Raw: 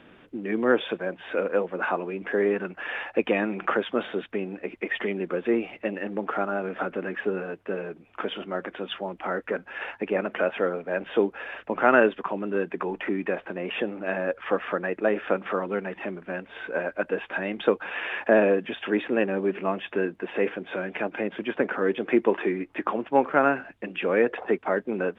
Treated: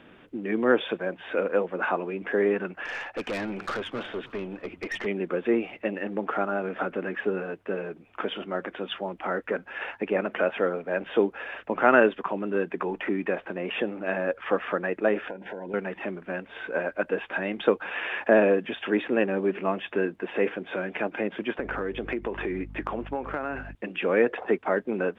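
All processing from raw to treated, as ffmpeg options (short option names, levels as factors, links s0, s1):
-filter_complex "[0:a]asettb=1/sr,asplit=3[s0][s1][s2];[s0]atrim=end=2.854[s3];[s1]atrim=start=2.85:end=5.06,asetpts=PTS-STARTPTS,afade=t=in:d=0.004:c=qsin,afade=t=out:st=2.206:d=0.004:c=qsin,aeval=exprs='(tanh(22.4*val(0)+0.15)-tanh(0.15))/22.4':c=same,asplit=5[s4][s5][s6][s7][s8];[s5]adelay=292,afreqshift=-100,volume=0.1[s9];[s6]adelay=584,afreqshift=-200,volume=0.049[s10];[s7]adelay=876,afreqshift=-300,volume=0.024[s11];[s8]adelay=1168,afreqshift=-400,volume=0.0117[s12];[s4][s9][s10][s11][s12]amix=inputs=5:normalize=0,atrim=end_sample=97461[s13];[s2]atrim=start=5.056[s14];[s3][s13]acrossfade=d=0.004:c1=hsin:c2=qsin[s15];[s15][s14]acrossfade=d=0.004:c1=qsin:c2=hsin,asettb=1/sr,asplit=3[s16][s17][s18];[s16]atrim=end=15.284[s19];[s17]atrim=start=15.28:end=15.74,asetpts=PTS-STARTPTS,afade=t=in:d=0.004:c=qsin,afade=t=out:st=0.456:d=0.004:c=qsin,equalizer=f=2400:w=0.92:g=-5.5,acompressor=threshold=0.0282:ratio=10:attack=3.2:release=140:knee=1:detection=peak,asuperstop=centerf=1200:order=12:qfactor=3.2[s20];[s18]atrim=start=15.736[s21];[s19][s20]acrossfade=d=0.004:c1=hsin:c2=qsin[s22];[s22][s21]acrossfade=d=0.004:c1=qsin:c2=hsin,asettb=1/sr,asplit=3[s23][s24][s25];[s23]atrim=end=21.594[s26];[s24]atrim=start=21.59:end=23.75,asetpts=PTS-STARTPTS,afade=t=in:d=0.004:c=qsin,afade=t=out:st=2.156:d=0.004:c=qsin,aeval=exprs='val(0)+0.01*(sin(2*PI*50*n/s)+sin(2*PI*2*50*n/s)/2+sin(2*PI*3*50*n/s)/3+sin(2*PI*4*50*n/s)/4+sin(2*PI*5*50*n/s)/5)':c=same,acompressor=threshold=0.0562:ratio=12:attack=3.2:release=140:knee=1:detection=peak[s27];[s25]atrim=start=23.746[s28];[s26][s27]acrossfade=d=0.004:c1=hsin:c2=qsin[s29];[s29][s28]acrossfade=d=0.004:c1=qsin:c2=hsin"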